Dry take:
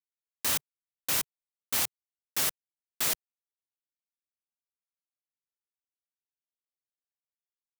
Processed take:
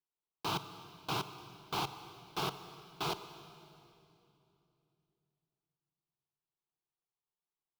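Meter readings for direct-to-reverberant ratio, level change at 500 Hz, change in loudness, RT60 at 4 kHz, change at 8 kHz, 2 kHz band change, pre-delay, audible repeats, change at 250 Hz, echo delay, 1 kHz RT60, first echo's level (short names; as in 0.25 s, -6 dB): 11.0 dB, +2.0 dB, -10.0 dB, 2.5 s, -19.5 dB, -7.5 dB, 31 ms, none, +3.0 dB, none, 2.7 s, none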